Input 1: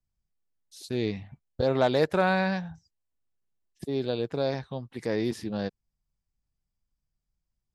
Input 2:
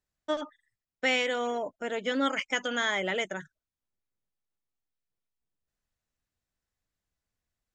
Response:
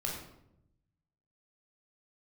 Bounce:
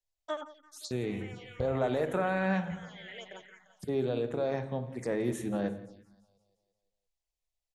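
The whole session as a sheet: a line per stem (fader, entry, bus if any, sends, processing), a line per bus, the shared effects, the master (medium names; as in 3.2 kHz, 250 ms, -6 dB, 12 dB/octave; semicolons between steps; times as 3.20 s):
0.0 dB, 0.00 s, send -8.5 dB, echo send -18 dB, peak limiter -22 dBFS, peak gain reduction 11 dB; peaking EQ 6.8 kHz +5 dB 0.49 oct; three bands expanded up and down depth 40%
-2.5 dB, 0.00 s, no send, echo send -16 dB, frequency weighting A; peak limiter -20.5 dBFS, peak gain reduction 7 dB; auto duck -20 dB, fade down 0.20 s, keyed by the first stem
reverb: on, RT60 0.80 s, pre-delay 15 ms
echo: feedback delay 173 ms, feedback 55%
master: peaking EQ 69 Hz -6 dB 2.5 oct; touch-sensitive phaser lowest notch 240 Hz, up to 4.9 kHz, full sweep at -34 dBFS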